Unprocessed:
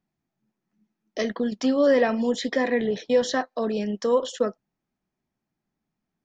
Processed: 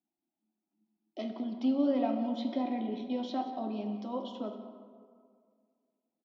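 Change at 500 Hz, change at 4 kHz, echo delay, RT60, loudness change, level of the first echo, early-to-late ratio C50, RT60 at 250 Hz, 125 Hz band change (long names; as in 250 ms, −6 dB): −15.0 dB, −13.0 dB, 184 ms, 2.0 s, −9.5 dB, −15.0 dB, 6.5 dB, 2.1 s, can't be measured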